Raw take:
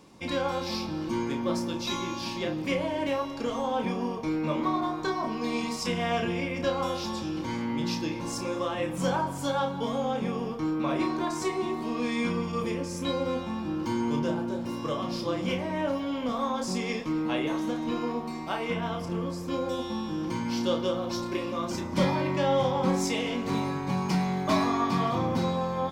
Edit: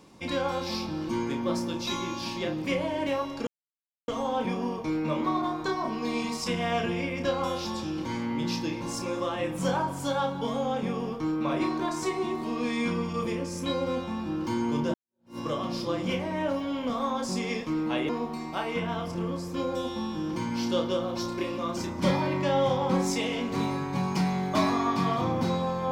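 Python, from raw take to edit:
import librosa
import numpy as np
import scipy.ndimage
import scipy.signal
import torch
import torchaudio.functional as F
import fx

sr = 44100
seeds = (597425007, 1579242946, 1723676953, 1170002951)

y = fx.edit(x, sr, fx.insert_silence(at_s=3.47, length_s=0.61),
    fx.fade_in_span(start_s=14.33, length_s=0.44, curve='exp'),
    fx.cut(start_s=17.48, length_s=0.55), tone=tone)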